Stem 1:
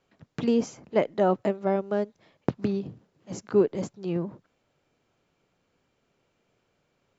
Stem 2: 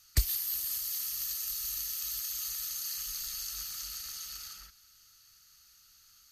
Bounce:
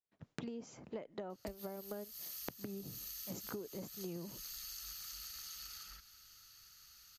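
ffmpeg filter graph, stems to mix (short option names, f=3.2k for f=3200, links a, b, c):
-filter_complex "[0:a]agate=range=-33dB:threshold=-55dB:ratio=3:detection=peak,acompressor=threshold=-26dB:ratio=4,volume=-3dB[a];[1:a]equalizer=f=8.7k:t=o:w=0.97:g=-5,acompressor=threshold=-53dB:ratio=2,adelay=1300,volume=2dB[b];[a][b]amix=inputs=2:normalize=0,acompressor=threshold=-41dB:ratio=12"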